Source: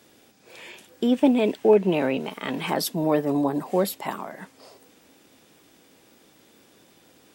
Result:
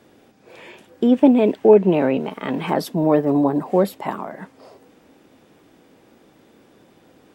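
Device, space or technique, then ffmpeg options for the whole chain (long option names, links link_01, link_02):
through cloth: -af "highshelf=frequency=2500:gain=-14,volume=6dB"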